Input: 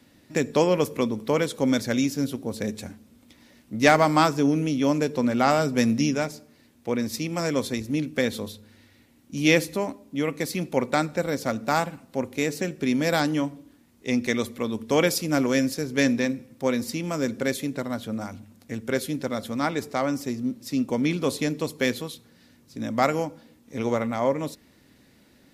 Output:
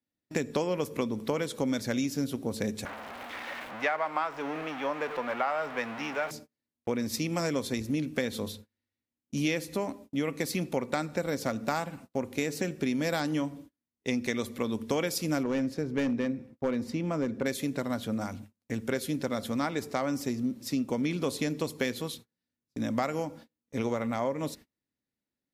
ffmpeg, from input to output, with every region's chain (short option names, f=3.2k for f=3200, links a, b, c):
-filter_complex "[0:a]asettb=1/sr,asplit=3[a][b][c];[a]atrim=end=2.854[d];[b]atrim=start=2.85:end=6.31,asetpts=PTS-STARTPTS,afade=t=in:d=0.004:c=qsin,afade=t=out:st=3.456:d=0.004:c=qsin,aeval=exprs='val(0)+0.5*0.0531*sgn(val(0))':c=same,acrossover=split=570 2700:gain=0.0708 1 0.0708[e][f][g];[e][f][g]amix=inputs=3:normalize=0[h];[c]atrim=start=6.306[i];[d][h]acrossfade=d=0.004:c1=hsin:c2=qsin[j];[j][i]acrossfade=d=0.004:c1=qsin:c2=hsin,asettb=1/sr,asplit=3[k][l][m];[k]atrim=end=15.434[n];[l]atrim=start=15.43:end=17.46,asetpts=PTS-STARTPTS,afade=t=in:d=0.004:c=qsin,afade=t=out:st=2.026:d=0.004:c=qsin,lowpass=f=1.4k:p=1,volume=18dB,asoftclip=hard,volume=-18dB[o];[m]atrim=start=17.456[p];[n][o]acrossfade=d=0.004:c1=hsin:c2=qsin[q];[q][p]acrossfade=d=0.004:c1=qsin:c2=hsin,agate=range=-34dB:threshold=-45dB:ratio=16:detection=peak,acompressor=threshold=-26dB:ratio=6"